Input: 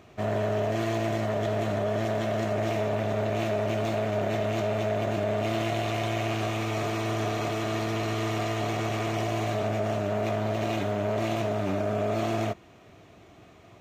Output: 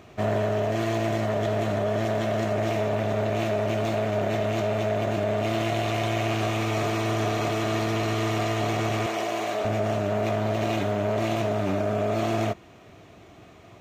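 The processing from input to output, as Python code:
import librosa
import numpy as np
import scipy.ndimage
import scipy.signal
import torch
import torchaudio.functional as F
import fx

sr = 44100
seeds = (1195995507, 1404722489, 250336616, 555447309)

y = fx.rider(x, sr, range_db=10, speed_s=0.5)
y = fx.highpass(y, sr, hz=330.0, slope=12, at=(9.06, 9.65))
y = y * librosa.db_to_amplitude(2.5)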